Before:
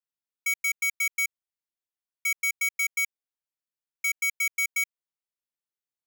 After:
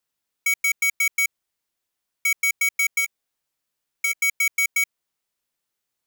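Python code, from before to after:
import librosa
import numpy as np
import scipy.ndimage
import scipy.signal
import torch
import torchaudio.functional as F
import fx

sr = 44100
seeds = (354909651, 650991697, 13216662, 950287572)

p1 = fx.over_compress(x, sr, threshold_db=-33.0, ratio=-1.0)
p2 = x + F.gain(torch.from_numpy(p1), -0.5).numpy()
p3 = fx.doubler(p2, sr, ms=14.0, db=-11.0, at=(2.99, 4.22))
y = F.gain(torch.from_numpy(p3), 2.5).numpy()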